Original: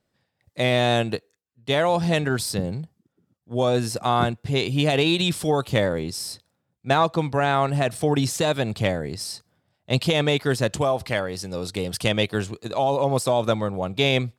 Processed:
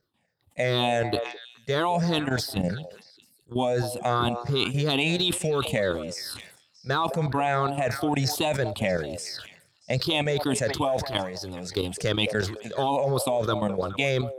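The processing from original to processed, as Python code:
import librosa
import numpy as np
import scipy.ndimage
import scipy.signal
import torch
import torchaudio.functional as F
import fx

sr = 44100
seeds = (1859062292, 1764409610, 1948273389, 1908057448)

p1 = fx.spec_ripple(x, sr, per_octave=0.57, drift_hz=-2.9, depth_db=15)
p2 = fx.low_shelf(p1, sr, hz=150.0, db=-3.0)
p3 = fx.level_steps(p2, sr, step_db=12)
p4 = p3 + fx.echo_stepped(p3, sr, ms=210, hz=620.0, octaves=1.4, feedback_pct=70, wet_db=-11, dry=0)
y = fx.sustainer(p4, sr, db_per_s=88.0)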